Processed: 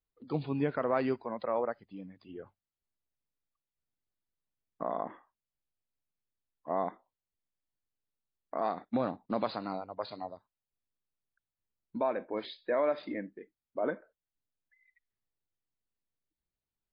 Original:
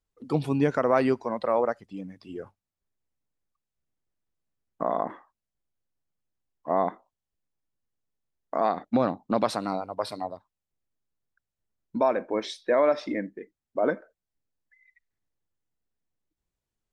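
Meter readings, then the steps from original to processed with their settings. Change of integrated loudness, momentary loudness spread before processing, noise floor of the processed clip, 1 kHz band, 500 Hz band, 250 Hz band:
-7.5 dB, 17 LU, under -85 dBFS, -7.5 dB, -7.5 dB, -7.5 dB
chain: gain -7 dB; MP3 24 kbps 11025 Hz

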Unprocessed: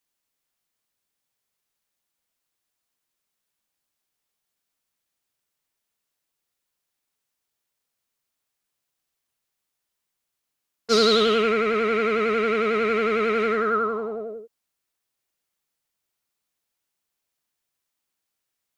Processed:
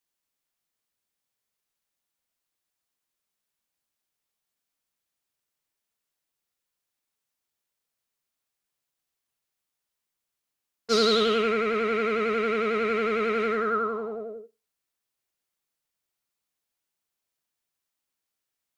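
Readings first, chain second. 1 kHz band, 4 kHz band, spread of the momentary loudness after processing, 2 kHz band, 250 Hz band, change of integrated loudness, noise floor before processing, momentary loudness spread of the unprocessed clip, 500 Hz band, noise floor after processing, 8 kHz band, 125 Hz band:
-3.5 dB, -3.5 dB, 12 LU, -3.5 dB, -3.0 dB, -3.5 dB, -82 dBFS, 12 LU, -3.5 dB, -85 dBFS, -3.5 dB, n/a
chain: Schroeder reverb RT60 0.3 s, combs from 28 ms, DRR 19 dB; gain -3.5 dB

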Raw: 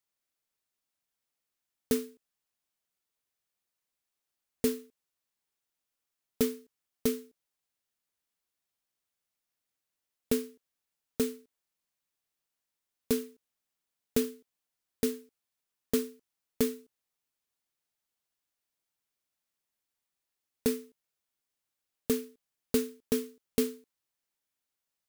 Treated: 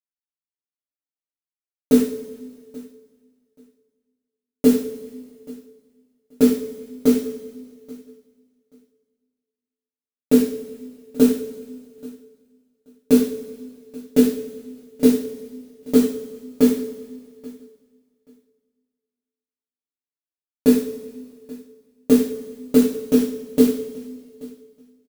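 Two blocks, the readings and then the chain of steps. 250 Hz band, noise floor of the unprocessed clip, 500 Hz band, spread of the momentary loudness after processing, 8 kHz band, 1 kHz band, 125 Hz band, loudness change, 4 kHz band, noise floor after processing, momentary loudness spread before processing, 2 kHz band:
+17.0 dB, under -85 dBFS, +12.5 dB, 21 LU, +6.5 dB, +10.5 dB, +9.5 dB, +13.5 dB, +6.5 dB, under -85 dBFS, 14 LU, +7.5 dB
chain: expander -49 dBFS; bell 320 Hz +13.5 dB 1.5 oct; AGC; on a send: feedback echo 0.831 s, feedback 19%, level -22.5 dB; on the sum: two-slope reverb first 0.44 s, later 1.9 s, from -17 dB, DRR -9 dB; gain -7.5 dB

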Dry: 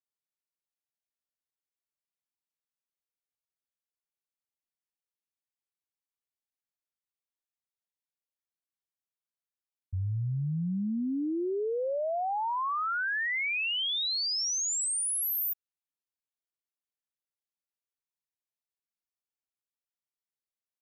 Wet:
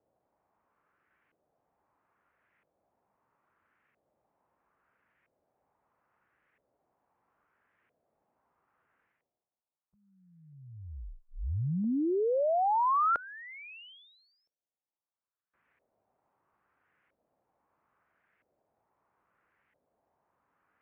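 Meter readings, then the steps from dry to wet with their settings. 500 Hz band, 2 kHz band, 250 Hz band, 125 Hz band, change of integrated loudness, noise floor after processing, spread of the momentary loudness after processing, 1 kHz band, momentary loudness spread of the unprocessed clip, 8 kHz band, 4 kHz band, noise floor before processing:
+1.0 dB, -14.0 dB, -2.0 dB, -4.5 dB, +0.5 dB, under -85 dBFS, 20 LU, +3.0 dB, 5 LU, under -40 dB, under -25 dB, under -85 dBFS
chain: reverse; upward compressor, threshold -49 dBFS; reverse; mistuned SSB -300 Hz 300–3100 Hz; HPF 52 Hz 12 dB/oct; LFO low-pass saw up 0.76 Hz 560–2000 Hz

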